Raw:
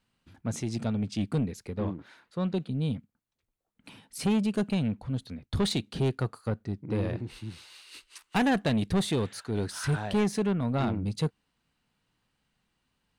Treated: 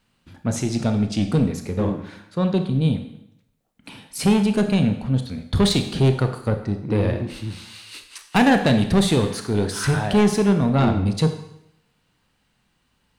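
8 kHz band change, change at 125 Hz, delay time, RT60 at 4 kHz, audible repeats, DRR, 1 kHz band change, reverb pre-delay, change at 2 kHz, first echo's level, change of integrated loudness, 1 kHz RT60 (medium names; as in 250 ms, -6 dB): +9.5 dB, +9.5 dB, no echo, 0.75 s, no echo, 6.5 dB, +9.5 dB, 24 ms, +9.5 dB, no echo, +9.5 dB, 0.75 s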